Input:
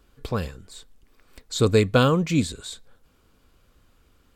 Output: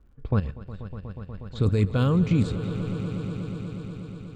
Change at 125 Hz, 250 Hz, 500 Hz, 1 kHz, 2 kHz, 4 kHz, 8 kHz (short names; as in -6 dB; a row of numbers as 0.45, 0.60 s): +2.5 dB, -0.5 dB, -7.5 dB, -8.0 dB, -9.0 dB, -11.0 dB, under -15 dB